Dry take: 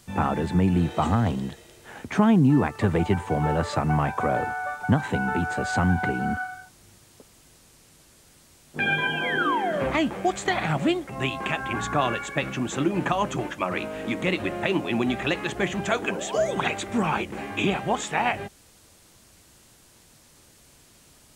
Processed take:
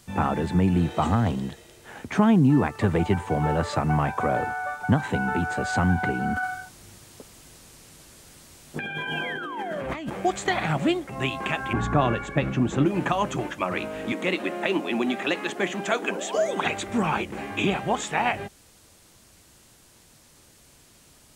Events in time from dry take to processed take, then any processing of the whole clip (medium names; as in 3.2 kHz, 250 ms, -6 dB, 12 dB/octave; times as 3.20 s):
6.36–10.10 s: compressor with a negative ratio -31 dBFS
11.73–12.86 s: tilt EQ -2.5 dB/octave
14.12–16.65 s: high-pass 200 Hz 24 dB/octave